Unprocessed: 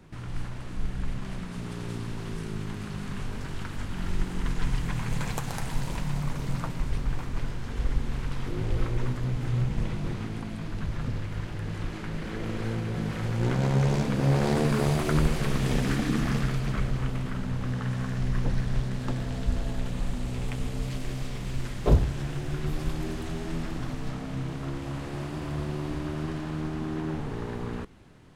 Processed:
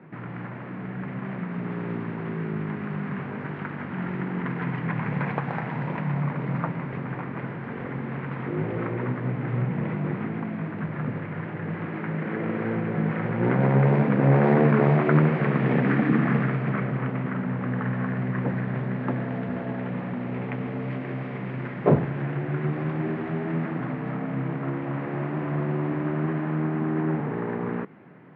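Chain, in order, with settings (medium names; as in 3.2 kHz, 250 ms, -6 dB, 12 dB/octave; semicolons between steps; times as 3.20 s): elliptic band-pass 150–2100 Hz, stop band 60 dB; trim +7 dB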